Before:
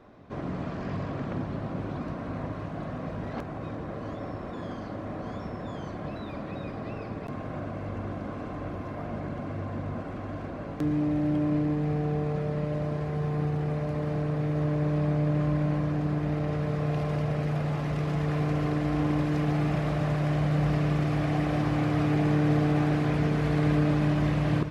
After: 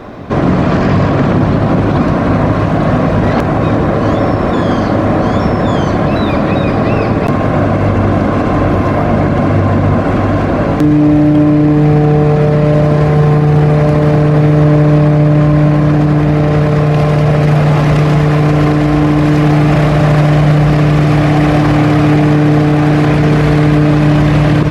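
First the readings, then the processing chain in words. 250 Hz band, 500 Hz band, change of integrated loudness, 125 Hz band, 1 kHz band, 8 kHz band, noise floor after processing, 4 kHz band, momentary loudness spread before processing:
+19.0 dB, +20.0 dB, +19.0 dB, +18.5 dB, +20.5 dB, can't be measured, −13 dBFS, +19.0 dB, 12 LU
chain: boost into a limiter +26 dB
level −1 dB

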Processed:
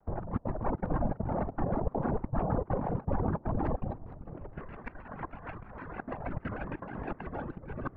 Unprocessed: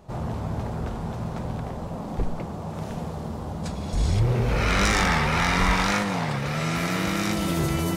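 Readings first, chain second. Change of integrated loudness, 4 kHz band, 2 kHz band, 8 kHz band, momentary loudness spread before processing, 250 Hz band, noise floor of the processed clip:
−10.0 dB, below −35 dB, −19.0 dB, below −40 dB, 12 LU, −8.0 dB, −54 dBFS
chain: in parallel at −4.5 dB: soft clipping −25 dBFS, distortion −9 dB
on the sum: parametric band 650 Hz +6.5 dB 0.38 octaves
echo with a time of its own for lows and highs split 1,000 Hz, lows 293 ms, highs 718 ms, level −13.5 dB
gate pattern ".xxxx.xxxx" 200 BPM −24 dB
random phases in short frames
reverb reduction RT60 1.5 s
low-pass filter 1,600 Hz 24 dB per octave
compressor whose output falls as the input rises −31 dBFS, ratio −0.5
low-shelf EQ 71 Hz +8.5 dB
on a send: echo with shifted repeats 428 ms, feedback 41%, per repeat +100 Hz, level −22.5 dB
on the sum: pitch modulation by a square or saw wave square 6.4 Hz, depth 250 cents
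level −4 dB

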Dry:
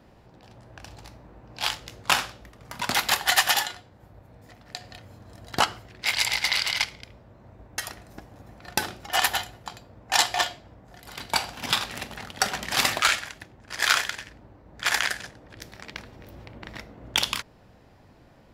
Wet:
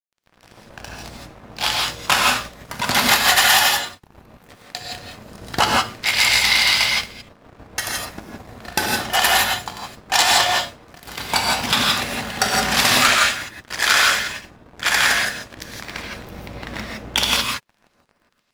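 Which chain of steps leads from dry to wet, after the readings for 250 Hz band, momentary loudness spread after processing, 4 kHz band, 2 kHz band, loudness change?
+11.0 dB, 20 LU, +8.5 dB, +9.0 dB, +8.0 dB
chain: dead-zone distortion −45.5 dBFS
power curve on the samples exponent 0.7
reverb whose tail is shaped and stops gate 190 ms rising, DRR −1.5 dB
level +1 dB

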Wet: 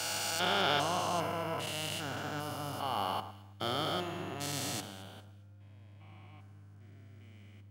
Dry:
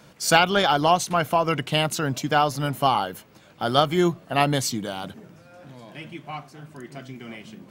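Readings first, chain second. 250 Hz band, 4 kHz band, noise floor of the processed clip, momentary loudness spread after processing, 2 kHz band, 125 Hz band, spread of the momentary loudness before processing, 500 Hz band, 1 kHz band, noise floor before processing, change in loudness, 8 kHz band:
−15.0 dB, −8.5 dB, −54 dBFS, 19 LU, −12.0 dB, −13.5 dB, 20 LU, −13.5 dB, −13.0 dB, −52 dBFS, −12.0 dB, −8.5 dB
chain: spectrum averaged block by block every 400 ms
spectral tilt +2 dB per octave
hum with harmonics 100 Hz, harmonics 3, −45 dBFS −8 dB per octave
on a send: delay that swaps between a low-pass and a high-pass 110 ms, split 1,500 Hz, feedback 56%, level −9.5 dB
on the sum: multiband upward and downward expander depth 70%
level −7.5 dB

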